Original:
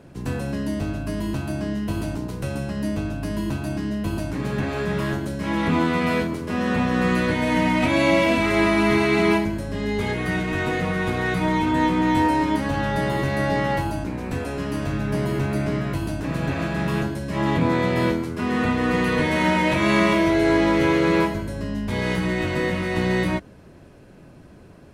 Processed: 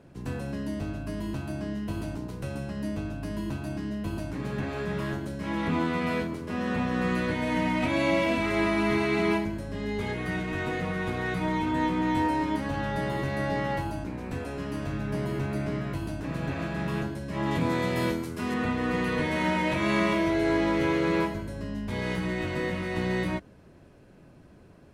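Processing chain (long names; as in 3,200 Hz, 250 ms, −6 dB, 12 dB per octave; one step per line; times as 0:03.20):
high-shelf EQ 5,300 Hz −3 dB, from 0:17.51 +9.5 dB, from 0:18.54 −2 dB
level −6.5 dB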